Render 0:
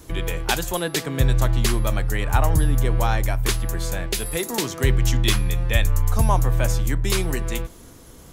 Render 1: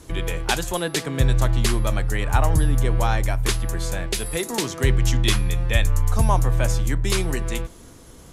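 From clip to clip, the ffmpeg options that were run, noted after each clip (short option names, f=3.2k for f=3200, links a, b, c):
-af "lowpass=f=12k:w=0.5412,lowpass=f=12k:w=1.3066"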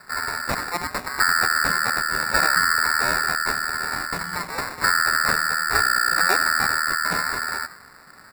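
-filter_complex "[0:a]asplit=4[a][b][c][d];[b]adelay=82,afreqshift=120,volume=-16.5dB[e];[c]adelay=164,afreqshift=240,volume=-27dB[f];[d]adelay=246,afreqshift=360,volume=-37.4dB[g];[a][e][f][g]amix=inputs=4:normalize=0,aeval=exprs='val(0)*sin(2*PI*1400*n/s)':c=same,acrusher=samples=14:mix=1:aa=0.000001"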